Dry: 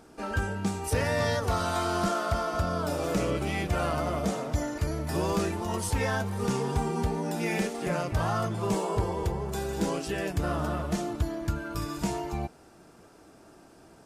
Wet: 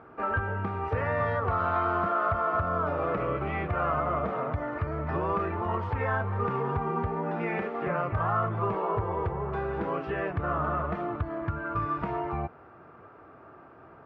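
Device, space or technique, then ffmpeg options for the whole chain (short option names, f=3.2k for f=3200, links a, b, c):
bass amplifier: -af "acompressor=threshold=-28dB:ratio=6,highpass=79,equalizer=f=97:t=q:w=4:g=3,equalizer=f=200:t=q:w=4:g=-8,equalizer=f=300:t=q:w=4:g=-5,equalizer=f=1.2k:t=q:w=4:g=9,lowpass=f=2.2k:w=0.5412,lowpass=f=2.2k:w=1.3066,volume=3.5dB"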